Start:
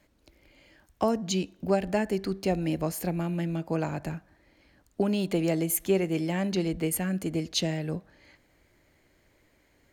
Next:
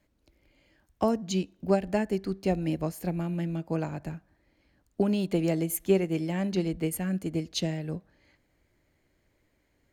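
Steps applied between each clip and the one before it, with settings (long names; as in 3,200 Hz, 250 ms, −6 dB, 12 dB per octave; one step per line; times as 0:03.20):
low-shelf EQ 330 Hz +4.5 dB
expander for the loud parts 1.5 to 1, over −34 dBFS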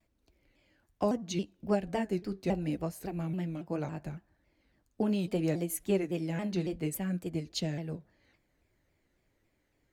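flanger 0.68 Hz, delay 0.9 ms, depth 9.5 ms, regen −56%
pitch modulation by a square or saw wave saw down 3.6 Hz, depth 160 cents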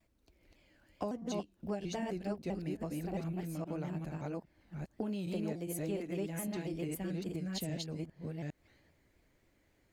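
delay that plays each chunk backwards 405 ms, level −1 dB
downward compressor 2.5 to 1, threshold −40 dBFS, peak gain reduction 12 dB
level +1 dB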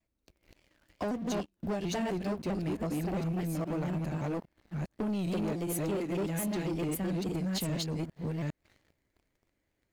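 leveller curve on the samples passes 3
level −2.5 dB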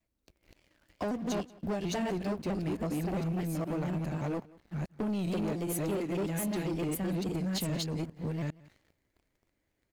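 single-tap delay 181 ms −22.5 dB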